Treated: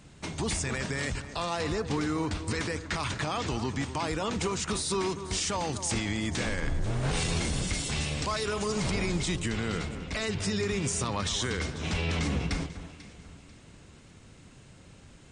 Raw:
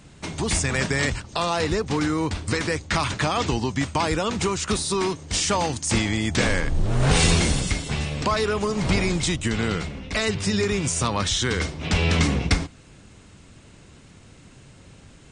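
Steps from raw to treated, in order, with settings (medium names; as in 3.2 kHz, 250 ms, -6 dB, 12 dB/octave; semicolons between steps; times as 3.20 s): 7.73–8.91 s: treble shelf 3.5 kHz +9.5 dB; peak limiter -16.5 dBFS, peak gain reduction 10.5 dB; on a send: echo whose repeats swap between lows and highs 246 ms, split 1.7 kHz, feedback 58%, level -11 dB; on the sum: trim -4.5 dB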